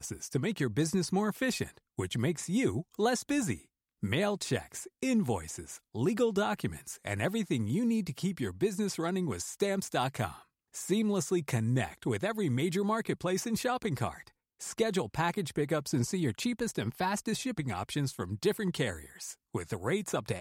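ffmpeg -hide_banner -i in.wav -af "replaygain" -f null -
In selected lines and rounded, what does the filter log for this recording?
track_gain = +13.0 dB
track_peak = 0.108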